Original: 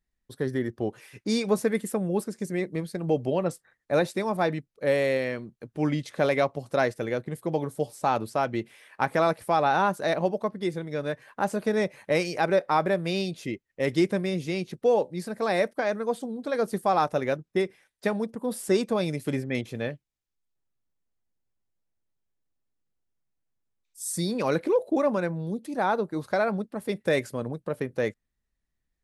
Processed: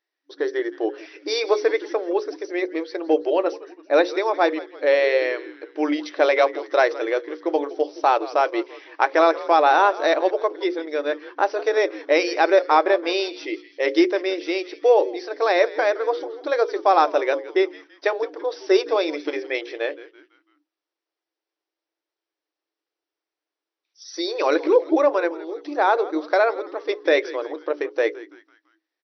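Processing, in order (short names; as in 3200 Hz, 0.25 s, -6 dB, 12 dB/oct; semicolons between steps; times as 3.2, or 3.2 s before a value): notches 60/120/180/240/300/360/420/480/540 Hz; frequency-shifting echo 0.167 s, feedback 49%, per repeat -110 Hz, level -17 dB; FFT band-pass 290–6000 Hz; gain +7 dB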